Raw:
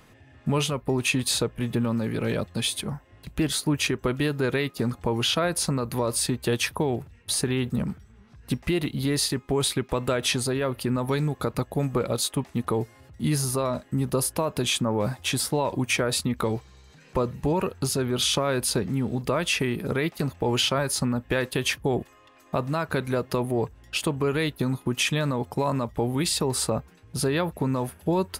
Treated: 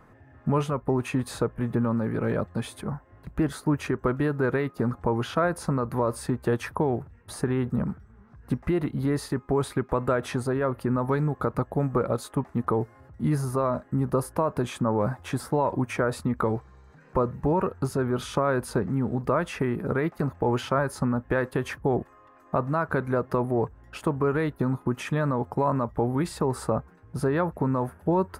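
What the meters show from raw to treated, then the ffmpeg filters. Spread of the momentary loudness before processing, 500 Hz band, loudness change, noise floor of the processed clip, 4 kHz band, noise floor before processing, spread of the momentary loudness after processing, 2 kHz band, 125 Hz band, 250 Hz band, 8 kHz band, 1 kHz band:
5 LU, +0.5 dB, -1.0 dB, -54 dBFS, -16.0 dB, -55 dBFS, 5 LU, -4.0 dB, 0.0 dB, 0.0 dB, -14.0 dB, +2.5 dB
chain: -af "highshelf=f=2100:t=q:w=1.5:g=-13.5"

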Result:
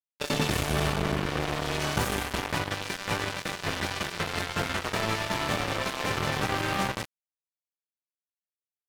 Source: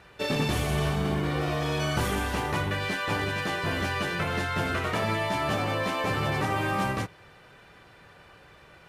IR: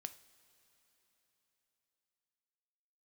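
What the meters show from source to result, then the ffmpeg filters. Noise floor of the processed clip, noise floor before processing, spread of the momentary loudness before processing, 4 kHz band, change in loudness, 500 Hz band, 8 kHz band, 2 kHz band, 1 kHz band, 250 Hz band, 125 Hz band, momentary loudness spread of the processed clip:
under -85 dBFS, -53 dBFS, 2 LU, +2.0 dB, -1.0 dB, -2.0 dB, +4.0 dB, -1.0 dB, -1.5 dB, -2.5 dB, -3.5 dB, 5 LU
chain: -af "acrusher=bits=3:mix=0:aa=0.5,aeval=exprs='sgn(val(0))*max(abs(val(0))-0.00501,0)':c=same,areverse,acompressor=mode=upward:threshold=0.01:ratio=2.5,areverse"

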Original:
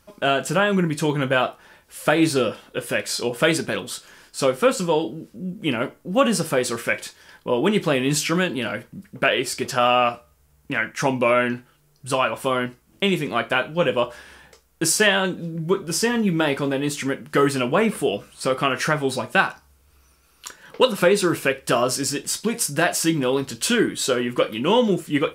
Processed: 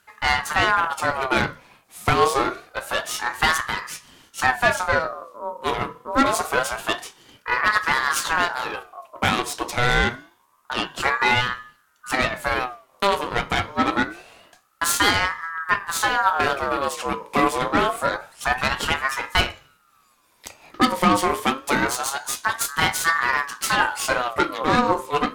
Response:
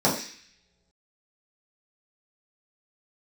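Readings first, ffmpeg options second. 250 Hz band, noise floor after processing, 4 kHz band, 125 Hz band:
-5.5 dB, -61 dBFS, 0.0 dB, -4.5 dB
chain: -filter_complex "[0:a]aeval=exprs='0.631*(cos(1*acos(clip(val(0)/0.631,-1,1)))-cos(1*PI/2))+0.0708*(cos(8*acos(clip(val(0)/0.631,-1,1)))-cos(8*PI/2))':c=same,asplit=2[s0][s1];[1:a]atrim=start_sample=2205,afade=t=out:st=0.42:d=0.01,atrim=end_sample=18963[s2];[s1][s2]afir=irnorm=-1:irlink=0,volume=0.0335[s3];[s0][s3]amix=inputs=2:normalize=0,aeval=exprs='val(0)*sin(2*PI*1100*n/s+1100*0.35/0.26*sin(2*PI*0.26*n/s))':c=same"

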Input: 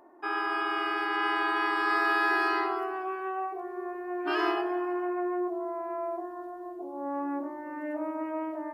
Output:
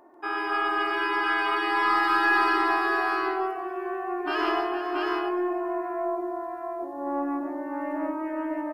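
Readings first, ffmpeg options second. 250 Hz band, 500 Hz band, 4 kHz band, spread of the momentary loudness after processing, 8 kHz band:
+3.5 dB, +3.0 dB, +4.0 dB, 11 LU, no reading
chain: -af "aecho=1:1:142|460|677:0.562|0.282|0.708,aeval=exprs='0.224*(cos(1*acos(clip(val(0)/0.224,-1,1)))-cos(1*PI/2))+0.0141*(cos(2*acos(clip(val(0)/0.224,-1,1)))-cos(2*PI/2))':c=same,volume=1.19"

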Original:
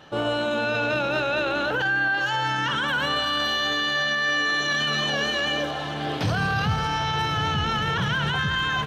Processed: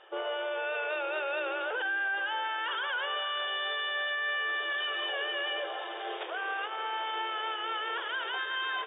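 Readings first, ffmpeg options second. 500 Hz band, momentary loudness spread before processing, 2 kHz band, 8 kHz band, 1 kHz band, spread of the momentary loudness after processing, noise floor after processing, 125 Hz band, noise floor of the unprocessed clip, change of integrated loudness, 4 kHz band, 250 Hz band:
-7.5 dB, 3 LU, -7.5 dB, under -40 dB, -8.0 dB, 4 LU, -38 dBFS, under -40 dB, -29 dBFS, -8.5 dB, -8.5 dB, -20.0 dB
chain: -af "asoftclip=type=tanh:threshold=0.106,afftfilt=real='re*between(b*sr/4096,330,3700)':imag='im*between(b*sr/4096,330,3700)':win_size=4096:overlap=0.75,volume=0.501"

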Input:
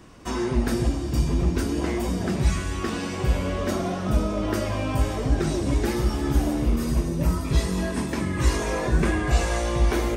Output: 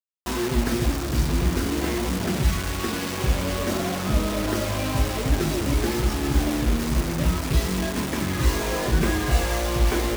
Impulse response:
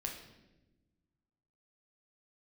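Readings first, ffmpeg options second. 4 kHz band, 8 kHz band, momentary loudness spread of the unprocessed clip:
+5.0 dB, +4.5 dB, 4 LU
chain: -filter_complex "[0:a]acrossover=split=6800[s0][s1];[s1]acompressor=threshold=0.00224:ratio=4:attack=1:release=60[s2];[s0][s2]amix=inputs=2:normalize=0,acrusher=bits=4:mix=0:aa=0.000001"

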